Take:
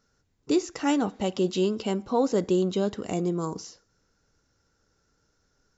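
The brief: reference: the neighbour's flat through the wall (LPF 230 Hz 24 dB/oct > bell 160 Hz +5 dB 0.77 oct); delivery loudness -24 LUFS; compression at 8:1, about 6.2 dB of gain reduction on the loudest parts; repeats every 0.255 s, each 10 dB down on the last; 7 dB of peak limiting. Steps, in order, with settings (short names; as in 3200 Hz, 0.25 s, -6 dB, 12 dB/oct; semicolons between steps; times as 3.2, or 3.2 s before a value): compressor 8:1, threshold -25 dBFS; limiter -24 dBFS; LPF 230 Hz 24 dB/oct; bell 160 Hz +5 dB 0.77 oct; feedback echo 0.255 s, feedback 32%, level -10 dB; gain +12 dB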